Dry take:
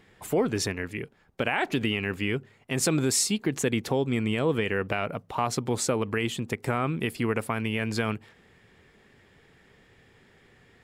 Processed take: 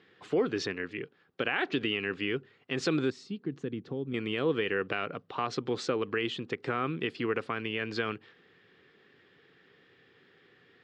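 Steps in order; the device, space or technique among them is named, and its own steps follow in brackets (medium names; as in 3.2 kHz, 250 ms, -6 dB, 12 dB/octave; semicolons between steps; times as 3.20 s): kitchen radio (cabinet simulation 210–4500 Hz, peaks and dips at 220 Hz -7 dB, 630 Hz -9 dB, 900 Hz -9 dB, 2.2 kHz -5 dB); 3.10–4.14 s: FFT filter 190 Hz 0 dB, 570 Hz -11 dB, 1.3 kHz -13 dB, 2.2 kHz -17 dB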